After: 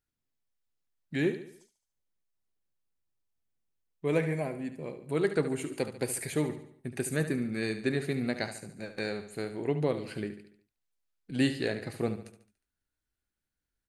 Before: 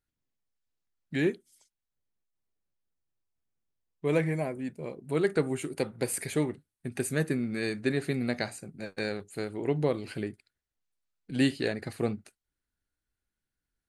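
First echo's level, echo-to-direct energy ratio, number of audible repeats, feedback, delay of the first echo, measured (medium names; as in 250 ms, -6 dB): -11.0 dB, -10.0 dB, 4, 47%, 72 ms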